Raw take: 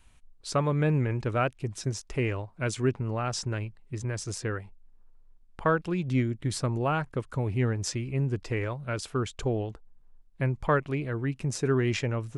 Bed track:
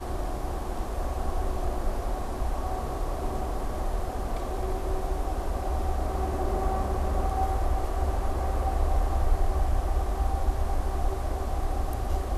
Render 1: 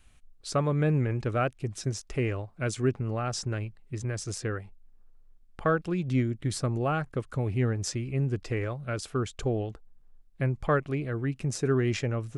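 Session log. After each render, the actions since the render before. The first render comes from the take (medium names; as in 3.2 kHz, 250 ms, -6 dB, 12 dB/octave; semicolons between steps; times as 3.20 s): band-stop 950 Hz, Q 7.1; dynamic bell 2.7 kHz, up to -3 dB, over -42 dBFS, Q 0.95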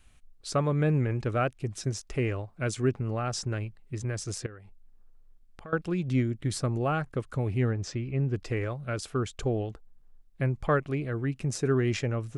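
4.46–5.73 s: compression 3:1, threshold -47 dBFS; 7.71–8.34 s: distance through air 120 m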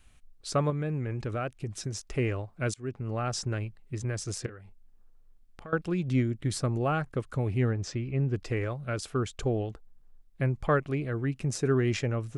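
0.70–2.05 s: compression 3:1, threshold -29 dBFS; 2.74–3.21 s: fade in, from -23.5 dB; 4.41–5.68 s: doubling 32 ms -13.5 dB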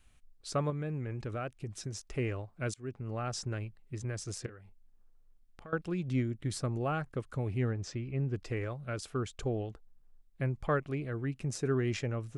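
trim -5 dB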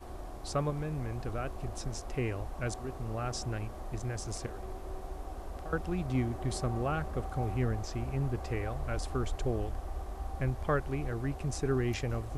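add bed track -12 dB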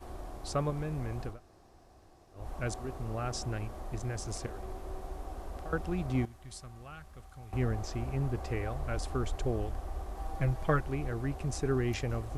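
1.32–2.41 s: room tone, crossfade 0.16 s; 6.25–7.53 s: amplifier tone stack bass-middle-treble 5-5-5; 10.16–10.81 s: comb 6.2 ms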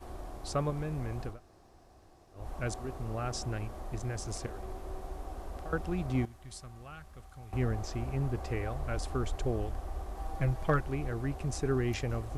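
hard clipper -17.5 dBFS, distortion -46 dB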